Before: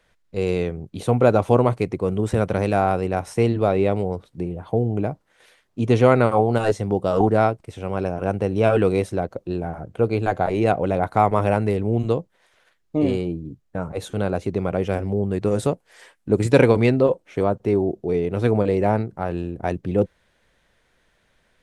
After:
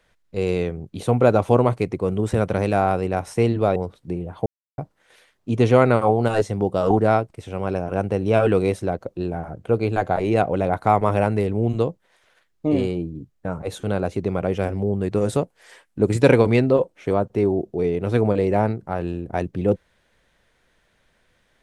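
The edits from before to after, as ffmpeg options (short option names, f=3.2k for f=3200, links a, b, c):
-filter_complex "[0:a]asplit=4[a][b][c][d];[a]atrim=end=3.762[e];[b]atrim=start=4.058:end=4.76,asetpts=PTS-STARTPTS,afade=t=out:st=0.698:d=0.004:c=hsin[f];[c]atrim=start=4.76:end=5.08,asetpts=PTS-STARTPTS,volume=0[g];[d]atrim=start=5.08,asetpts=PTS-STARTPTS,afade=t=in:d=0.004:c=hsin[h];[f][g][h]concat=n=3:v=0:a=1[i];[e][i]acrossfade=d=0.004:c1=hsin:c2=hsin"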